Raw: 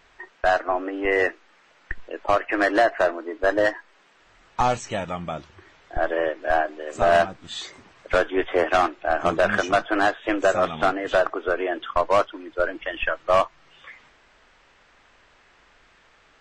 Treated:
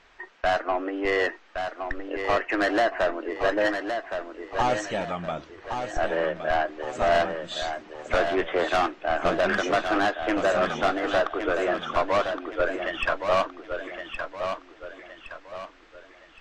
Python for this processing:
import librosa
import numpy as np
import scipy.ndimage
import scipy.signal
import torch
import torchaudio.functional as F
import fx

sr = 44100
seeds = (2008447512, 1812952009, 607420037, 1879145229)

p1 = scipy.signal.sosfilt(scipy.signal.butter(2, 6900.0, 'lowpass', fs=sr, output='sos'), x)
p2 = fx.peak_eq(p1, sr, hz=100.0, db=-7.5, octaves=0.85)
p3 = 10.0 ** (-17.0 / 20.0) * np.tanh(p2 / 10.0 ** (-17.0 / 20.0))
y = p3 + fx.echo_feedback(p3, sr, ms=1117, feedback_pct=39, wet_db=-7, dry=0)